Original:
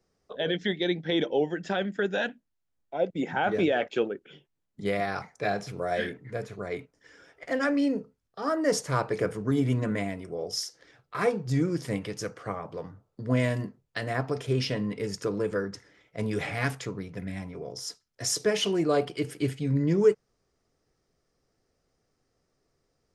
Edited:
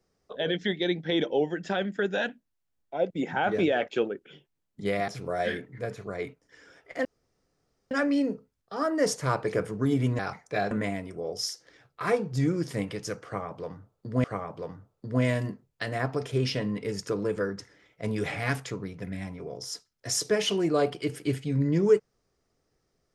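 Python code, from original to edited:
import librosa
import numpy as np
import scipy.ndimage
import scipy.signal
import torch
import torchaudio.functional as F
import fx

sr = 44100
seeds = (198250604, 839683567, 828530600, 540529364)

y = fx.edit(x, sr, fx.move(start_s=5.08, length_s=0.52, to_s=9.85),
    fx.insert_room_tone(at_s=7.57, length_s=0.86),
    fx.repeat(start_s=12.39, length_s=0.99, count=2), tone=tone)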